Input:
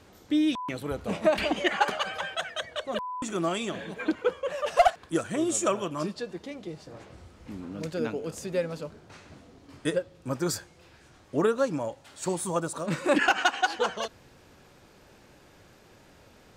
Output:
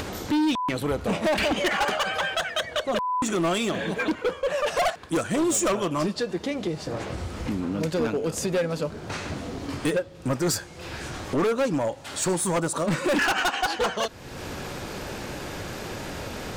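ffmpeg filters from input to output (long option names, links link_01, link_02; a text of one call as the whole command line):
ffmpeg -i in.wav -af "acompressor=mode=upward:threshold=-27dB:ratio=2.5,asoftclip=type=hard:threshold=-26.5dB,volume=6.5dB" out.wav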